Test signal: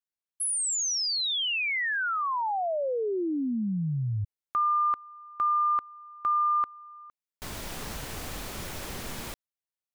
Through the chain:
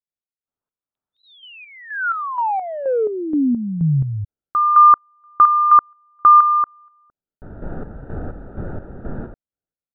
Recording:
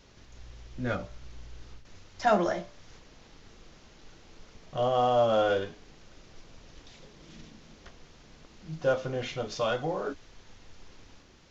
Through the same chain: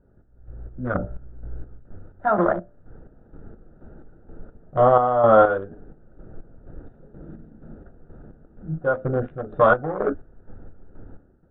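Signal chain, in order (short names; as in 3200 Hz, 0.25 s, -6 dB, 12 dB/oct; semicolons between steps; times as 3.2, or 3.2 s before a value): Wiener smoothing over 41 samples; resonant high shelf 1900 Hz -11.5 dB, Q 3; AGC gain up to 13 dB; chopper 2.1 Hz, depth 60%, duty 45%; downsampling 8000 Hz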